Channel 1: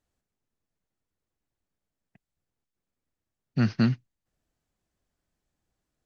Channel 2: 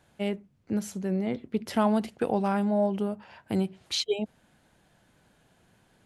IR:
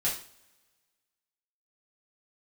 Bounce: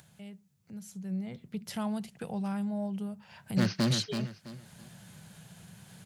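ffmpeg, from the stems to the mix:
-filter_complex "[0:a]volume=23dB,asoftclip=hard,volume=-23dB,volume=-1dB,asplit=2[link_01][link_02];[link_02]volume=-7dB[link_03];[1:a]lowshelf=frequency=220:width_type=q:width=3:gain=7.5,acompressor=mode=upward:threshold=-22dB:ratio=2.5,volume=-13dB,afade=type=in:start_time=0.71:duration=0.69:silence=0.334965[link_04];[link_03]aecho=0:1:330|660|990|1320:1|0.28|0.0784|0.022[link_05];[link_01][link_04][link_05]amix=inputs=3:normalize=0,highpass=93,highshelf=frequency=3300:gain=12"

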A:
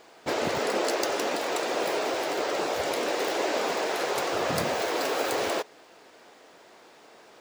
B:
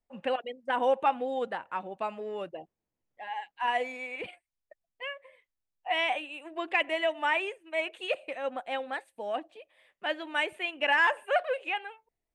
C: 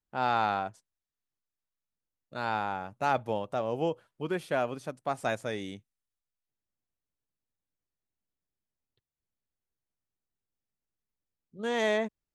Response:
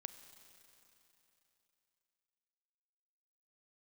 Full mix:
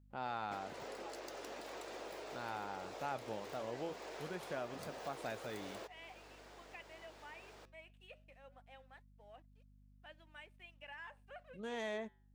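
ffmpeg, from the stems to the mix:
-filter_complex "[0:a]acompressor=threshold=-36dB:ratio=6,adelay=250,volume=-0.5dB[link_01];[1:a]highpass=frequency=500:poles=1,aeval=exprs='sgn(val(0))*max(abs(val(0))-0.00158,0)':channel_layout=same,volume=-18.5dB[link_02];[2:a]volume=-0.5dB[link_03];[link_01][link_02][link_03]amix=inputs=3:normalize=0,aeval=exprs='val(0)+0.00112*(sin(2*PI*50*n/s)+sin(2*PI*2*50*n/s)/2+sin(2*PI*3*50*n/s)/3+sin(2*PI*4*50*n/s)/4+sin(2*PI*5*50*n/s)/5)':channel_layout=same,flanger=delay=0.2:depth=6.6:regen=-90:speed=0.2:shape=sinusoidal,acompressor=threshold=-53dB:ratio=1.5"

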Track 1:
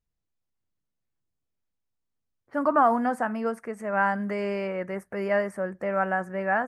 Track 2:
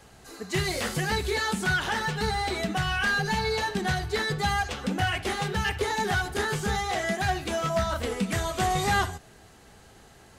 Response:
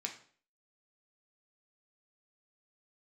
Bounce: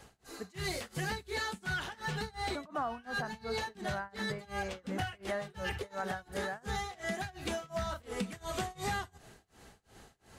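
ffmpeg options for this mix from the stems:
-filter_complex "[0:a]volume=-6.5dB,asplit=2[link_01][link_02];[1:a]volume=-2dB[link_03];[link_02]apad=whole_len=458013[link_04];[link_03][link_04]sidechaincompress=threshold=-37dB:ratio=6:attack=6:release=101[link_05];[link_01][link_05]amix=inputs=2:normalize=0,tremolo=f=2.8:d=0.97,acompressor=threshold=-32dB:ratio=6"

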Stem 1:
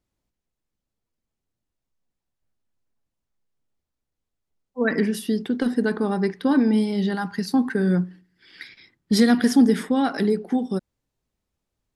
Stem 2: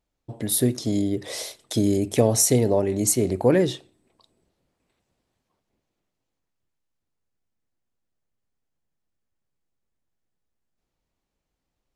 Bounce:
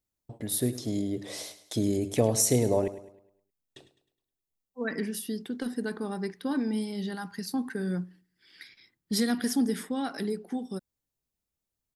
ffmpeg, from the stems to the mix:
ffmpeg -i stem1.wav -i stem2.wav -filter_complex "[0:a]aemphasis=mode=production:type=50kf,volume=-3.5dB[link_01];[1:a]dynaudnorm=framelen=470:gausssize=11:maxgain=8dB,agate=range=-36dB:threshold=-39dB:ratio=16:detection=peak,volume=-7dB,asplit=3[link_02][link_03][link_04];[link_02]atrim=end=2.88,asetpts=PTS-STARTPTS,afade=type=out:start_time=2.876:duration=0.004:curve=hsin[link_05];[link_03]atrim=start=2.88:end=3.76,asetpts=PTS-STARTPTS,volume=0[link_06];[link_04]atrim=start=3.76,asetpts=PTS-STARTPTS,afade=type=in:duration=0.004:curve=hsin[link_07];[link_05][link_06][link_07]concat=n=3:v=0:a=1,asplit=3[link_08][link_09][link_10];[link_09]volume=-14.5dB[link_11];[link_10]apad=whole_len=527182[link_12];[link_01][link_12]sidechaingate=range=-7dB:threshold=-38dB:ratio=16:detection=peak[link_13];[link_11]aecho=0:1:104|208|312|416|520|624:1|0.41|0.168|0.0689|0.0283|0.0116[link_14];[link_13][link_08][link_14]amix=inputs=3:normalize=0" out.wav

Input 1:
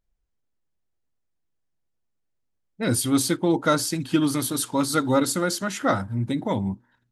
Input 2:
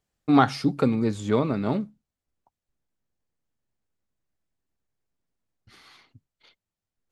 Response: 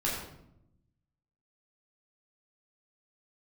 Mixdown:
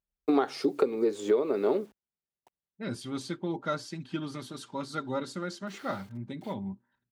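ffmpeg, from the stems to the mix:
-filter_complex "[0:a]lowpass=4800,aecho=1:1:5.1:0.42,volume=-12dB[link_01];[1:a]highpass=frequency=400:width_type=q:width=4.9,acrusher=bits=9:mix=0:aa=0.000001,volume=-1dB[link_02];[link_01][link_02]amix=inputs=2:normalize=0,highpass=44,acompressor=threshold=-22dB:ratio=6"

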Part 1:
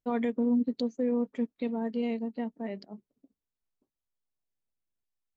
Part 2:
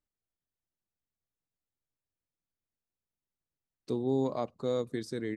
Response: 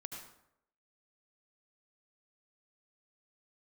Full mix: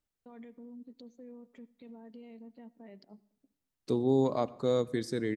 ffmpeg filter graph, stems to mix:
-filter_complex "[0:a]acompressor=threshold=-33dB:ratio=3,alimiter=level_in=9dB:limit=-24dB:level=0:latency=1:release=31,volume=-9dB,adelay=200,volume=-10dB,asplit=2[link_01][link_02];[link_02]volume=-14.5dB[link_03];[1:a]volume=2dB,asplit=2[link_04][link_05];[link_05]volume=-13.5dB[link_06];[2:a]atrim=start_sample=2205[link_07];[link_03][link_06]amix=inputs=2:normalize=0[link_08];[link_08][link_07]afir=irnorm=-1:irlink=0[link_09];[link_01][link_04][link_09]amix=inputs=3:normalize=0"

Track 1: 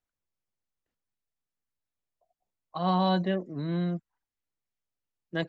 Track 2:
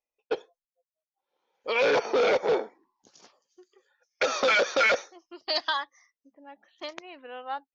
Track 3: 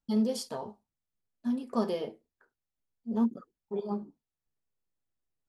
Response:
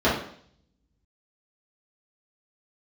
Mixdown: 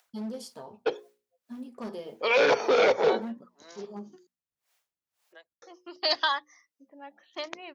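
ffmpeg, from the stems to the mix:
-filter_complex "[0:a]highpass=frequency=560:width=0.5412,highpass=frequency=560:width=1.3066,acompressor=mode=upward:threshold=-45dB:ratio=2.5,aeval=exprs='val(0)*pow(10,-31*(0.5-0.5*cos(2*PI*1.9*n/s))/20)':channel_layout=same,volume=-4.5dB[link_01];[1:a]bandreject=frequency=60:width_type=h:width=6,bandreject=frequency=120:width_type=h:width=6,bandreject=frequency=180:width_type=h:width=6,bandreject=frequency=240:width_type=h:width=6,bandreject=frequency=300:width_type=h:width=6,bandreject=frequency=360:width_type=h:width=6,bandreject=frequency=420:width_type=h:width=6,bandreject=frequency=480:width_type=h:width=6,bandreject=frequency=540:width_type=h:width=6,adelay=550,volume=2dB,asplit=3[link_02][link_03][link_04];[link_02]atrim=end=4.27,asetpts=PTS-STARTPTS,afade=type=out:start_time=4.266:duration=0.004:curve=hsin[link_05];[link_03]atrim=start=4.27:end=5.62,asetpts=PTS-STARTPTS,volume=0[link_06];[link_04]atrim=start=5.62,asetpts=PTS-STARTPTS,afade=type=in:duration=0.004:curve=hsin[link_07];[link_05][link_06][link_07]concat=n=3:v=0:a=1[link_08];[2:a]asoftclip=type=hard:threshold=-25dB,adelay=50,volume=-6.5dB[link_09];[link_01][link_08][link_09]amix=inputs=3:normalize=0,highpass=57,bandreject=frequency=60:width_type=h:width=6,bandreject=frequency=120:width_type=h:width=6,bandreject=frequency=180:width_type=h:width=6,bandreject=frequency=240:width_type=h:width=6"

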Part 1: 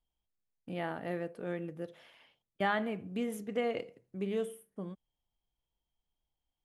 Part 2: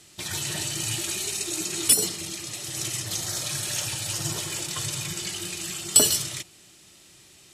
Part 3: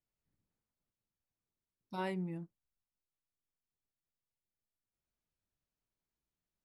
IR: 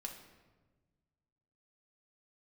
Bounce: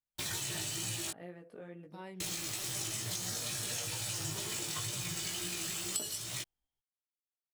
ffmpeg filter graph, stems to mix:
-filter_complex "[0:a]acompressor=threshold=-40dB:ratio=6,adelay=150,volume=-1dB[link_01];[1:a]acrusher=bits=5:mix=0:aa=0.000001,volume=1dB,asplit=3[link_02][link_03][link_04];[link_02]atrim=end=1.11,asetpts=PTS-STARTPTS,afade=type=out:start_time=1.106:duration=0.004:curve=hsin[link_05];[link_03]atrim=start=1.11:end=2.2,asetpts=PTS-STARTPTS,volume=0[link_06];[link_04]atrim=start=2.2,asetpts=PTS-STARTPTS,afade=type=in:duration=0.004:curve=hsin[link_07];[link_05][link_06][link_07]concat=n=3:v=0:a=1[link_08];[2:a]volume=-9.5dB,asplit=2[link_09][link_10];[link_10]apad=whole_len=299667[link_11];[link_01][link_11]sidechaincompress=threshold=-54dB:ratio=8:attack=16:release=1180[link_12];[link_12][link_08]amix=inputs=2:normalize=0,flanger=delay=16.5:depth=2.3:speed=2.2,acompressor=threshold=-34dB:ratio=12,volume=0dB[link_13];[link_09][link_13]amix=inputs=2:normalize=0"

